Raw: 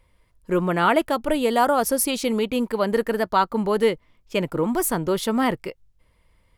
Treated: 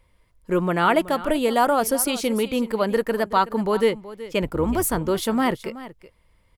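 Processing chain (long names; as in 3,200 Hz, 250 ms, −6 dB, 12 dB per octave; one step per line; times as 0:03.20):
0:04.42–0:04.99: sub-octave generator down 2 octaves, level −5 dB
single-tap delay 375 ms −16 dB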